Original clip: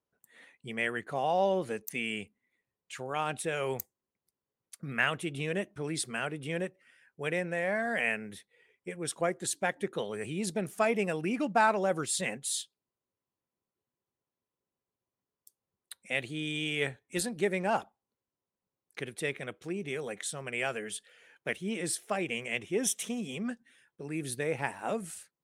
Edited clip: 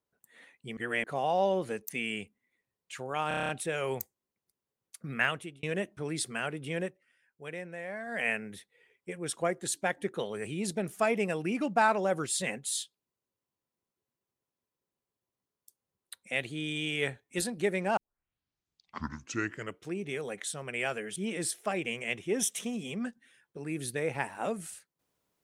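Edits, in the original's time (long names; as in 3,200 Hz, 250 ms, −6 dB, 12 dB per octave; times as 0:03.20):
0:00.77–0:01.04: reverse
0:03.28: stutter 0.03 s, 8 plays
0:05.04–0:05.42: fade out
0:06.64–0:08.06: duck −8.5 dB, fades 0.21 s
0:17.76: tape start 1.94 s
0:20.95–0:21.60: remove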